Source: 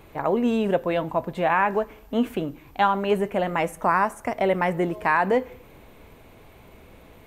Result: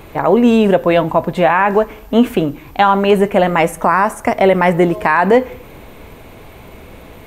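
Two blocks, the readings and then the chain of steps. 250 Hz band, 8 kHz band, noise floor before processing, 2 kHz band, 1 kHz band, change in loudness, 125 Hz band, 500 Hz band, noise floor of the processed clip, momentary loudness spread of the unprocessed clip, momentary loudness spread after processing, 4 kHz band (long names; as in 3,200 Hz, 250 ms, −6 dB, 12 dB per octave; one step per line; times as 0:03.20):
+11.5 dB, +12.0 dB, −50 dBFS, +8.5 dB, +9.0 dB, +10.5 dB, +11.5 dB, +11.0 dB, −38 dBFS, 7 LU, 5 LU, +11.0 dB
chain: boost into a limiter +13 dB
level −1 dB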